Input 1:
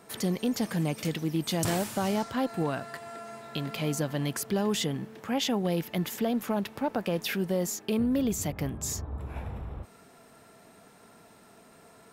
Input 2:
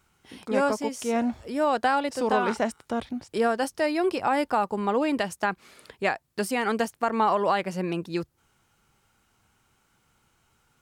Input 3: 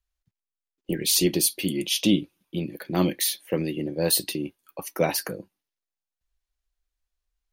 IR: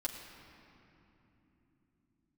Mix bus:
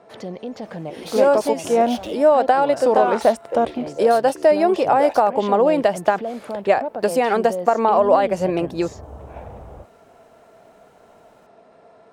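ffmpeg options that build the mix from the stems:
-filter_complex "[0:a]lowpass=4300,volume=0.708[s0];[1:a]acompressor=threshold=0.0631:ratio=6,adelay=650,volume=1.41[s1];[2:a]highpass=410,asoftclip=type=hard:threshold=0.112,adynamicsmooth=sensitivity=7:basefreq=1200,volume=0.422,asplit=2[s2][s3];[s3]apad=whole_len=534867[s4];[s0][s4]sidechaincompress=threshold=0.00631:ratio=8:attack=5.3:release=320[s5];[s5][s2]amix=inputs=2:normalize=0,alimiter=level_in=1.58:limit=0.0631:level=0:latency=1:release=152,volume=0.631,volume=1[s6];[s1][s6]amix=inputs=2:normalize=0,equalizer=f=610:t=o:w=1.3:g=13.5"

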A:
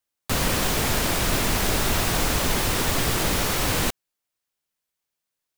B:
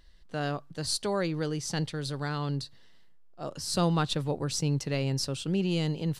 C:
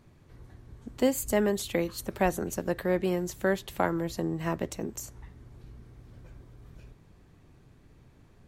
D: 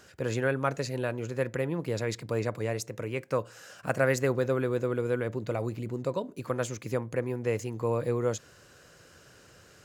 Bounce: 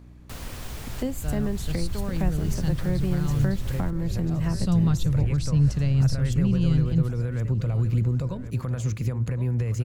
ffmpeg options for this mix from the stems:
-filter_complex "[0:a]volume=0.158,asplit=2[s0][s1];[s1]volume=0.178[s2];[1:a]adelay=900,volume=1.12,asplit=2[s3][s4];[s4]volume=0.0708[s5];[2:a]volume=1.33,asplit=3[s6][s7][s8];[s7]volume=0.158[s9];[3:a]agate=range=0.0224:threshold=0.00794:ratio=3:detection=peak,dynaudnorm=f=720:g=3:m=4.47,alimiter=limit=0.2:level=0:latency=1:release=107,adelay=2150,volume=0.501,asplit=2[s10][s11];[s11]volume=0.224[s12];[s8]apad=whole_len=528795[s13];[s10][s13]sidechaincompress=threshold=0.0126:ratio=8:attack=16:release=114[s14];[s2][s5][s9][s12]amix=inputs=4:normalize=0,aecho=0:1:1070|2140|3210|4280:1|0.22|0.0484|0.0106[s15];[s0][s3][s6][s14][s15]amix=inputs=5:normalize=0,asubboost=boost=7:cutoff=130,acrossover=split=290[s16][s17];[s17]acompressor=threshold=0.0126:ratio=3[s18];[s16][s18]amix=inputs=2:normalize=0,aeval=exprs='val(0)+0.00501*(sin(2*PI*60*n/s)+sin(2*PI*2*60*n/s)/2+sin(2*PI*3*60*n/s)/3+sin(2*PI*4*60*n/s)/4+sin(2*PI*5*60*n/s)/5)':c=same"

